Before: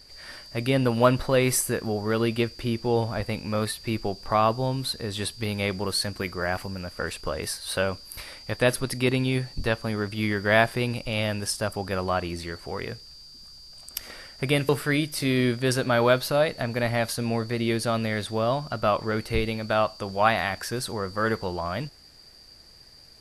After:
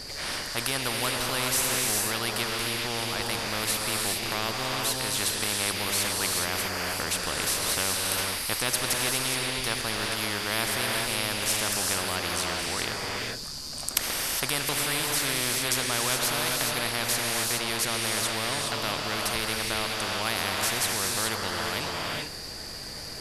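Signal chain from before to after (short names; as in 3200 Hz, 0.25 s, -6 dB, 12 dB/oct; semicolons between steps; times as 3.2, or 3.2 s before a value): non-linear reverb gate 0.44 s rising, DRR 2 dB; spectral compressor 4:1; gain +2.5 dB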